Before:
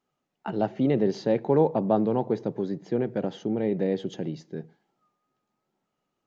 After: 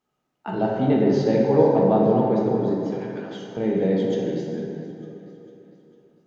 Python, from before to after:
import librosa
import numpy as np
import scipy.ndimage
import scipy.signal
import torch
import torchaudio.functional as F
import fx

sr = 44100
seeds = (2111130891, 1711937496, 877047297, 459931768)

p1 = fx.highpass(x, sr, hz=1400.0, slope=12, at=(2.91, 3.57))
p2 = p1 + fx.echo_feedback(p1, sr, ms=451, feedback_pct=52, wet_db=-17.5, dry=0)
y = fx.rev_plate(p2, sr, seeds[0], rt60_s=2.7, hf_ratio=0.5, predelay_ms=0, drr_db=-3.0)